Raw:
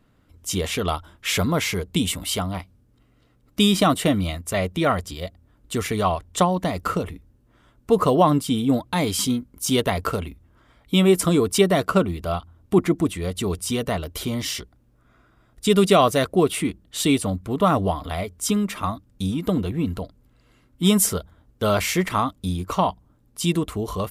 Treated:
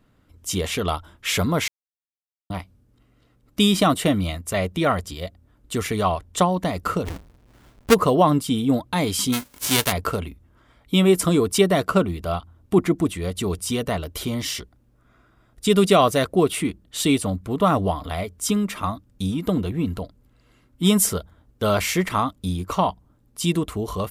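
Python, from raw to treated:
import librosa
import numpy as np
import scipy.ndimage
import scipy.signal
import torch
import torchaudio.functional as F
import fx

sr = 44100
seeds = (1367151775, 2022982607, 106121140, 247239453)

y = fx.halfwave_hold(x, sr, at=(7.05, 7.93), fade=0.02)
y = fx.envelope_flatten(y, sr, power=0.3, at=(9.32, 9.91), fade=0.02)
y = fx.edit(y, sr, fx.silence(start_s=1.68, length_s=0.82), tone=tone)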